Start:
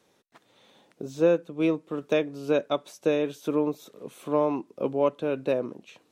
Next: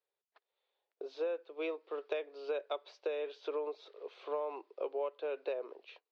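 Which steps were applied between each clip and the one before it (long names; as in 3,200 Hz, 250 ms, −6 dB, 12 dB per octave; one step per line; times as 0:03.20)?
noise gate −51 dBFS, range −22 dB
Chebyshev band-pass filter 400–4,700 Hz, order 4
downward compressor 6 to 1, threshold −30 dBFS, peak gain reduction 11 dB
level −3.5 dB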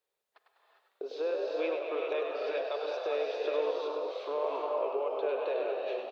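brickwall limiter −30.5 dBFS, peak gain reduction 6.5 dB
echo with shifted repeats 100 ms, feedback 50%, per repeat +58 Hz, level −6 dB
reverb whose tail is shaped and stops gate 430 ms rising, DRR 0 dB
level +4.5 dB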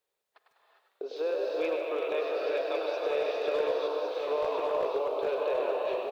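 hard clipping −24.5 dBFS, distortion −24 dB
on a send: single-tap delay 1,106 ms −5.5 dB
on the sum: feedback echo at a low word length 150 ms, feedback 35%, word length 10 bits, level −11 dB
level +1.5 dB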